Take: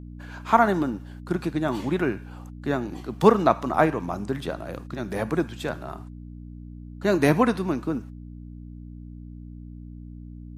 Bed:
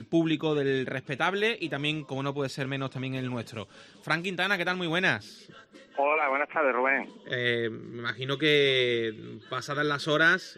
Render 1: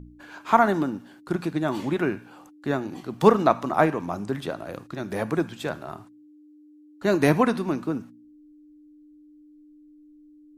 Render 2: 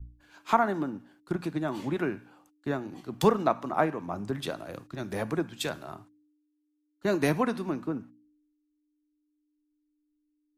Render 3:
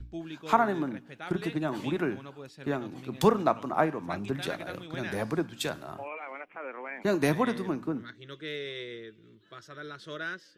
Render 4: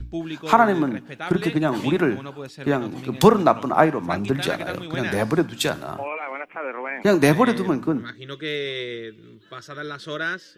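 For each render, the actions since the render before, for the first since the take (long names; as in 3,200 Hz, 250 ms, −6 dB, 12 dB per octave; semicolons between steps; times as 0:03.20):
hum removal 60 Hz, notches 4
downward compressor 2.5 to 1, threshold −29 dBFS, peak gain reduction 13 dB; multiband upward and downward expander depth 100%
mix in bed −14.5 dB
level +9.5 dB; brickwall limiter −2 dBFS, peak gain reduction 3 dB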